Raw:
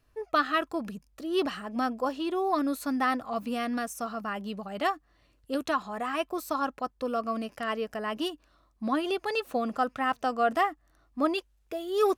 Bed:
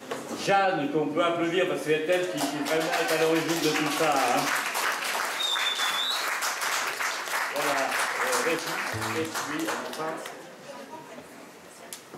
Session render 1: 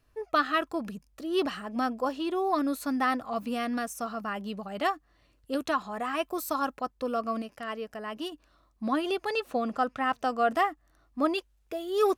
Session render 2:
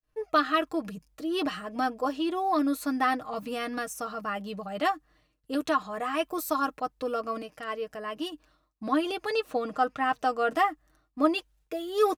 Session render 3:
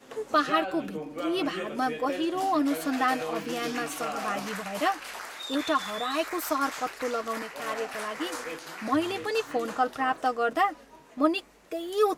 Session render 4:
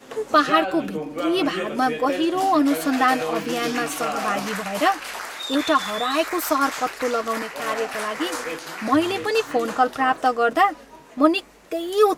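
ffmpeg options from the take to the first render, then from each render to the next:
ffmpeg -i in.wav -filter_complex "[0:a]asettb=1/sr,asplit=3[link_01][link_02][link_03];[link_01]atrim=end=6.244[link_04];[link_02]atrim=start=6.24:end=6.78,asetpts=PTS-STARTPTS,afade=type=in:duration=0.004:curve=qsin,afade=type=out:start_time=0.536:duration=0.004:curve=qsin,highshelf=frequency=7600:gain=8[link_05];[link_03]atrim=start=6.776[link_06];[link_04][link_05]acrossfade=duration=0.004:curve1=hsin:curve2=qsin[link_07];[link_07][link_06]acrossfade=duration=0.004:curve1=qsin:curve2=hsin,asettb=1/sr,asplit=3[link_08][link_09][link_10];[link_08]atrim=end=9.324[link_11];[link_09]atrim=start=9.32:end=10.17,asetpts=PTS-STARTPTS,afade=type=in:duration=0.004:curve=qsin,afade=type=out:start_time=0.846:duration=0.004:curve=qsin,highshelf=frequency=11000:gain=-8.5[link_12];[link_10]atrim=start=10.166[link_13];[link_11][link_12]acrossfade=duration=0.004:curve1=hsin:curve2=qsin[link_14];[link_14][link_13]acrossfade=duration=0.004:curve1=qsin:curve2=hsin,asplit=3[link_15][link_16][link_17];[link_15]atrim=end=7.422[link_18];[link_16]atrim=start=7.418:end=8.322,asetpts=PTS-STARTPTS,volume=-4.5dB[link_19];[link_17]atrim=start=8.318[link_20];[link_18][link_19]acrossfade=duration=0.004:curve1=hsin:curve2=hsin[link_21];[link_21][link_20]acrossfade=duration=0.004:curve1=hsin:curve2=hsin" out.wav
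ffmpeg -i in.wav -af "aecho=1:1:6.5:0.57,agate=range=-33dB:threshold=-57dB:ratio=3:detection=peak" out.wav
ffmpeg -i in.wav -i bed.wav -filter_complex "[1:a]volume=-10.5dB[link_01];[0:a][link_01]amix=inputs=2:normalize=0" out.wav
ffmpeg -i in.wav -af "volume=7dB" out.wav

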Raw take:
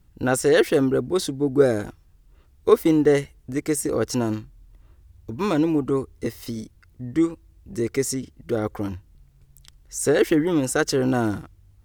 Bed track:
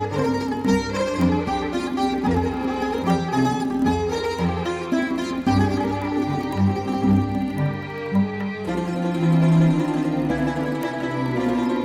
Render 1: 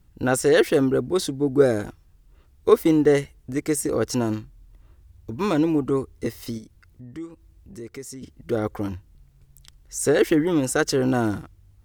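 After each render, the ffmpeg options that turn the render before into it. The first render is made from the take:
ffmpeg -i in.wav -filter_complex "[0:a]asplit=3[link_01][link_02][link_03];[link_01]afade=type=out:start_time=6.57:duration=0.02[link_04];[link_02]acompressor=threshold=-44dB:ratio=2:attack=3.2:release=140:knee=1:detection=peak,afade=type=in:start_time=6.57:duration=0.02,afade=type=out:start_time=8.21:duration=0.02[link_05];[link_03]afade=type=in:start_time=8.21:duration=0.02[link_06];[link_04][link_05][link_06]amix=inputs=3:normalize=0" out.wav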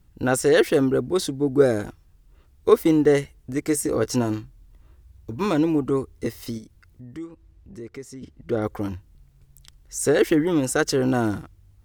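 ffmpeg -i in.wav -filter_complex "[0:a]asettb=1/sr,asplit=3[link_01][link_02][link_03];[link_01]atrim=end=3.664[link_04];[link_02]atrim=start=3.66:end=5.46,asetpts=PTS-STARTPTS,afade=type=in:duration=0.004:curve=qsin,afade=type=out:start_time=1.796:duration=0.004:curve=qsin,asplit=2[link_05][link_06];[link_06]adelay=16,volume=-10.5dB[link_07];[link_05][link_07]amix=inputs=2:normalize=0,atrim=end_sample=79380[link_08];[link_03]atrim=start=5.456[link_09];[link_04][link_08]acrossfade=duration=0.004:curve1=hsin:curve2=qsin[link_10];[link_10][link_09]acrossfade=duration=0.004:curve1=qsin:curve2=hsin,asettb=1/sr,asplit=3[link_11][link_12][link_13];[link_11]atrim=end=7.244[link_14];[link_12]atrim=start=7.24:end=8.62,asetpts=PTS-STARTPTS,afade=type=in:duration=0.004:curve=qsin,afade=type=out:start_time=1.376:duration=0.004:curve=qsin,lowpass=frequency=3600:poles=1[link_15];[link_13]atrim=start=8.616[link_16];[link_14][link_15]acrossfade=duration=0.004:curve1=hsin:curve2=qsin[link_17];[link_17][link_16]acrossfade=duration=0.004:curve1=qsin:curve2=hsin" out.wav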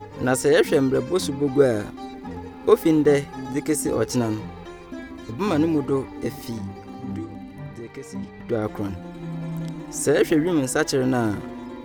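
ffmpeg -i in.wav -i bed.wav -filter_complex "[1:a]volume=-14dB[link_01];[0:a][link_01]amix=inputs=2:normalize=0" out.wav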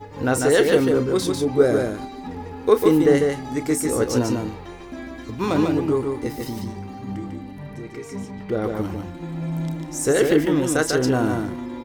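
ffmpeg -i in.wav -filter_complex "[0:a]asplit=2[link_01][link_02];[link_02]adelay=32,volume=-13dB[link_03];[link_01][link_03]amix=inputs=2:normalize=0,aecho=1:1:147:0.631" out.wav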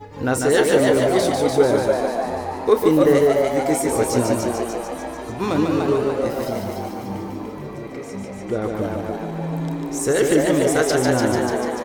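ffmpeg -i in.wav -filter_complex "[0:a]asplit=8[link_01][link_02][link_03][link_04][link_05][link_06][link_07][link_08];[link_02]adelay=294,afreqshift=120,volume=-4dB[link_09];[link_03]adelay=588,afreqshift=240,volume=-9.5dB[link_10];[link_04]adelay=882,afreqshift=360,volume=-15dB[link_11];[link_05]adelay=1176,afreqshift=480,volume=-20.5dB[link_12];[link_06]adelay=1470,afreqshift=600,volume=-26.1dB[link_13];[link_07]adelay=1764,afreqshift=720,volume=-31.6dB[link_14];[link_08]adelay=2058,afreqshift=840,volume=-37.1dB[link_15];[link_01][link_09][link_10][link_11][link_12][link_13][link_14][link_15]amix=inputs=8:normalize=0" out.wav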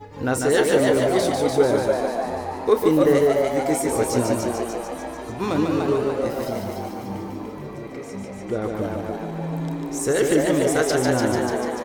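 ffmpeg -i in.wav -af "volume=-2dB" out.wav

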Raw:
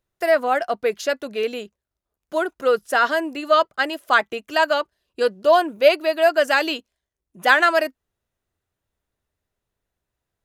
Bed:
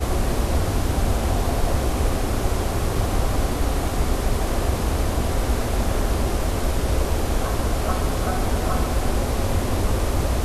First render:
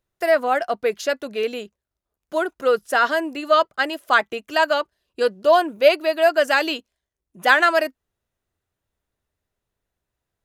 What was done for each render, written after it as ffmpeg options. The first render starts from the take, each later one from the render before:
ffmpeg -i in.wav -af anull out.wav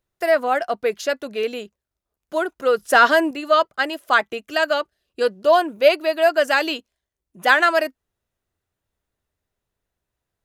ffmpeg -i in.wav -filter_complex "[0:a]asettb=1/sr,asplit=3[link_01][link_02][link_03];[link_01]atrim=end=2.794[link_04];[link_02]atrim=start=2.79:end=3.31,asetpts=PTS-STARTPTS,afade=type=in:duration=0.004:curve=qsin,afade=type=out:start_time=0.516:duration=0.004:curve=qsin,acontrast=49[link_05];[link_03]atrim=start=3.306[link_06];[link_04][link_05]acrossfade=duration=0.004:curve1=hsin:curve2=qsin[link_07];[link_07][link_06]acrossfade=duration=0.004:curve1=qsin:curve2=hsin,asettb=1/sr,asplit=3[link_08][link_09][link_10];[link_08]atrim=end=4.374[link_11];[link_09]atrim=start=4.37:end=5.2,asetpts=PTS-STARTPTS,afade=type=in:duration=0.004:curve=qsin,afade=type=out:start_time=0.826:duration=0.004:curve=qsin,bandreject=frequency=990:width=5.7[link_12];[link_10]atrim=start=5.196[link_13];[link_11][link_12]acrossfade=duration=0.004:curve1=hsin:curve2=qsin[link_14];[link_14][link_13]acrossfade=duration=0.004:curve1=qsin:curve2=hsin" out.wav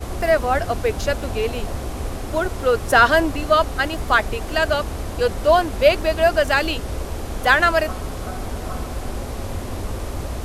ffmpeg -i in.wav -i bed.wav -filter_complex "[1:a]volume=-6dB[link_01];[0:a][link_01]amix=inputs=2:normalize=0" out.wav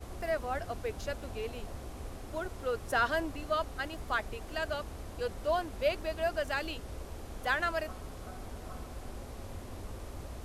ffmpeg -i in.wav -af "volume=-15.5dB" out.wav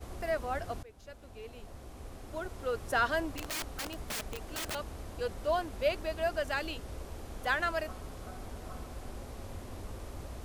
ffmpeg -i in.wav -filter_complex "[0:a]asettb=1/sr,asplit=3[link_01][link_02][link_03];[link_01]atrim=end=3.364[link_04];[link_02]atrim=start=3.36:end=4.75,asetpts=PTS-STARTPTS,afade=type=in:duration=0.004:curve=qsin,afade=type=out:start_time=1.386:duration=0.004:curve=qsin,aeval=exprs='(mod(37.6*val(0)+1,2)-1)/37.6':channel_layout=same[link_05];[link_03]atrim=start=4.746[link_06];[link_04][link_05]acrossfade=duration=0.004:curve1=hsin:curve2=qsin[link_07];[link_07][link_06]acrossfade=duration=0.004:curve1=qsin:curve2=hsin,asplit=2[link_08][link_09];[link_08]atrim=end=0.83,asetpts=PTS-STARTPTS,afade=type=out:start_time=0.826:duration=0.004:curve=hsin:silence=0.112202[link_10];[link_09]atrim=start=0.83,asetpts=PTS-STARTPTS,afade=type=in:duration=1.97:silence=0.112202[link_11];[link_10][link_11]concat=n=2:v=0:a=1" out.wav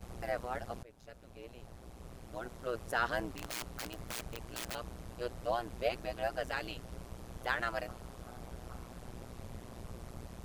ffmpeg -i in.wav -af "tremolo=f=120:d=0.974" out.wav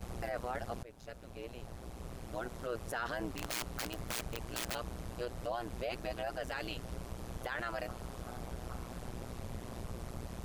ffmpeg -i in.wav -filter_complex "[0:a]asplit=2[link_01][link_02];[link_02]acompressor=threshold=-44dB:ratio=6,volume=-2.5dB[link_03];[link_01][link_03]amix=inputs=2:normalize=0,alimiter=level_in=4dB:limit=-24dB:level=0:latency=1:release=11,volume=-4dB" out.wav

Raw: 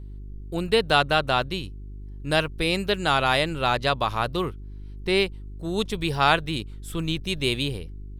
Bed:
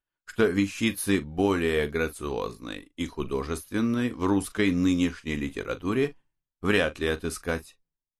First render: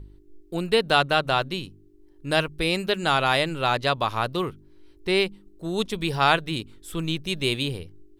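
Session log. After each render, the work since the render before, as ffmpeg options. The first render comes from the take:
ffmpeg -i in.wav -af "bandreject=frequency=50:width_type=h:width=4,bandreject=frequency=100:width_type=h:width=4,bandreject=frequency=150:width_type=h:width=4,bandreject=frequency=200:width_type=h:width=4,bandreject=frequency=250:width_type=h:width=4" out.wav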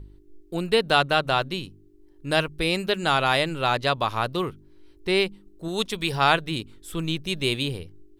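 ffmpeg -i in.wav -filter_complex "[0:a]asettb=1/sr,asplit=3[link_01][link_02][link_03];[link_01]atrim=end=5.684[link_04];[link_02]atrim=start=5.68:end=6.12,asetpts=PTS-STARTPTS,afade=type=in:duration=0.004:curve=qsin,afade=type=out:start_time=0.436:duration=0.004:curve=qsin,tiltshelf=frequency=660:gain=-3.5[link_05];[link_03]atrim=start=6.116[link_06];[link_04][link_05]acrossfade=duration=0.004:curve1=hsin:curve2=qsin[link_07];[link_07][link_06]acrossfade=duration=0.004:curve1=qsin:curve2=hsin" out.wav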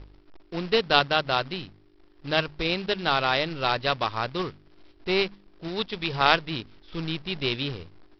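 ffmpeg -i in.wav -af "aeval=exprs='0.596*(cos(1*acos(clip(val(0)/0.596,-1,1)))-cos(1*PI/2))+0.0841*(cos(2*acos(clip(val(0)/0.596,-1,1)))-cos(2*PI/2))+0.0473*(cos(3*acos(clip(val(0)/0.596,-1,1)))-cos(3*PI/2))+0.00944*(cos(7*acos(clip(val(0)/0.596,-1,1)))-cos(7*PI/2))':channel_layout=same,aresample=11025,acrusher=bits=2:mode=log:mix=0:aa=0.000001,aresample=44100" out.wav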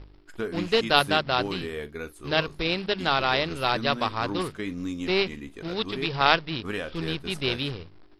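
ffmpeg -i in.wav -i bed.wav -filter_complex "[1:a]volume=-9dB[link_01];[0:a][link_01]amix=inputs=2:normalize=0" out.wav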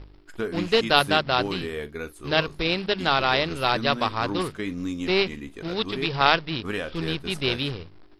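ffmpeg -i in.wav -af "volume=2dB,alimiter=limit=-2dB:level=0:latency=1" out.wav

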